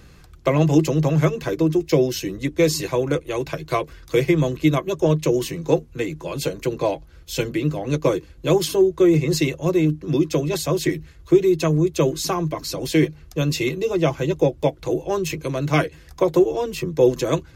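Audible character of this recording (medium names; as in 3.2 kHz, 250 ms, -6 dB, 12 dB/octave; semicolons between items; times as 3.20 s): noise floor -46 dBFS; spectral tilt -6.0 dB/octave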